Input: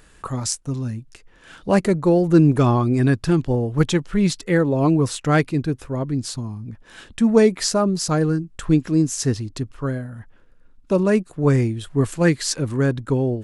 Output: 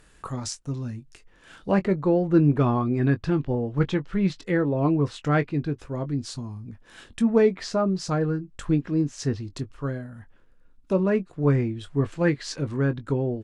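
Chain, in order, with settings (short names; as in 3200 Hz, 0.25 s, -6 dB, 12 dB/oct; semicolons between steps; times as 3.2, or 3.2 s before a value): treble ducked by the level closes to 2900 Hz, closed at -16 dBFS; doubler 21 ms -11.5 dB; gain -5 dB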